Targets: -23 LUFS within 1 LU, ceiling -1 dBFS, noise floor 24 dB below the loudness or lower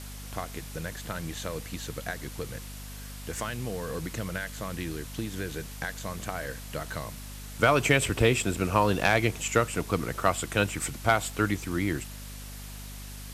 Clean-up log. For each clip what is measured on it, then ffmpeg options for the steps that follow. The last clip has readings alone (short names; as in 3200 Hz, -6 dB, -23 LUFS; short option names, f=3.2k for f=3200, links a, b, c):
hum 50 Hz; harmonics up to 250 Hz; hum level -40 dBFS; noise floor -41 dBFS; noise floor target -53 dBFS; loudness -29.0 LUFS; peak -8.0 dBFS; loudness target -23.0 LUFS
-> -af "bandreject=f=50:t=h:w=6,bandreject=f=100:t=h:w=6,bandreject=f=150:t=h:w=6,bandreject=f=200:t=h:w=6,bandreject=f=250:t=h:w=6"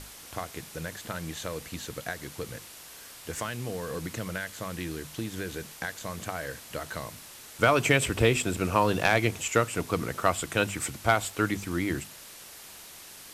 hum none; noise floor -47 dBFS; noise floor target -54 dBFS
-> -af "afftdn=nr=7:nf=-47"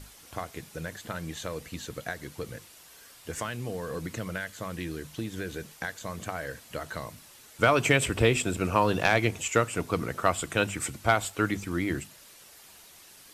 noise floor -53 dBFS; noise floor target -54 dBFS
-> -af "afftdn=nr=6:nf=-53"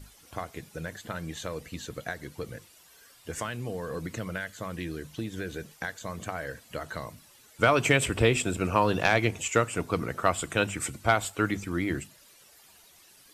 noise floor -57 dBFS; loudness -29.5 LUFS; peak -8.0 dBFS; loudness target -23.0 LUFS
-> -af "volume=6.5dB"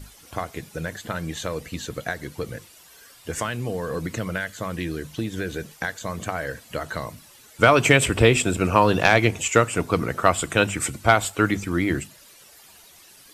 loudness -23.0 LUFS; peak -1.5 dBFS; noise floor -50 dBFS